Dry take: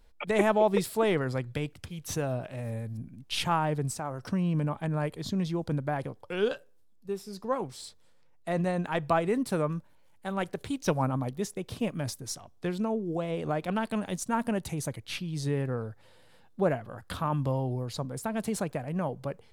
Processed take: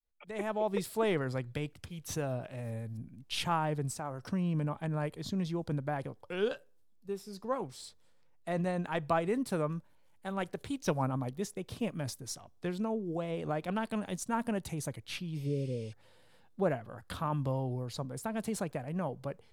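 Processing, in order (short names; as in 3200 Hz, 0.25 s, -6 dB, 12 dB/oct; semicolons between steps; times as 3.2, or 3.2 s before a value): opening faded in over 1.05 s; spectral repair 15.39–15.9, 610–11000 Hz before; gain -4 dB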